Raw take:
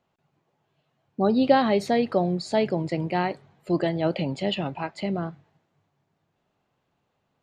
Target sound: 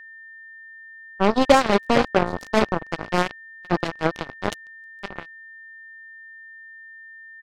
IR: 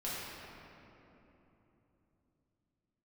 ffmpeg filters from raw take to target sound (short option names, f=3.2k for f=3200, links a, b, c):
-filter_complex "[0:a]asettb=1/sr,asplit=3[a][b][c];[a]atrim=end=4.504[d];[b]atrim=start=4.5:end=4.95,asetpts=PTS-STARTPTS,afade=t=in:d=0.004:c=qsin,afade=t=out:st=0.446:d=0.004:c=qsin,highpass=f=1.3k:p=1[e];[c]atrim=start=4.946[f];[d][e]acrossfade=d=0.004:c1=hsin:c2=qsin[g];[g][f]acrossfade=d=0.004:c1=qsin:c2=hsin,asplit=2[h][i];[i]adelay=458,lowpass=f=3k:p=1,volume=-9.5dB,asplit=2[j][k];[k]adelay=458,lowpass=f=3k:p=1,volume=0.54,asplit=2[l][m];[m]adelay=458,lowpass=f=3k:p=1,volume=0.54,asplit=2[n][o];[o]adelay=458,lowpass=f=3k:p=1,volume=0.54,asplit=2[p][q];[q]adelay=458,lowpass=f=3k:p=1,volume=0.54,asplit=2[r][s];[s]adelay=458,lowpass=f=3k:p=1,volume=0.54[t];[h][j][l][n][p][r][t]amix=inputs=7:normalize=0,acrusher=bits=2:mix=0:aa=0.5,aeval=exprs='val(0)+0.00631*sin(2*PI*1800*n/s)':c=same,volume=3.5dB"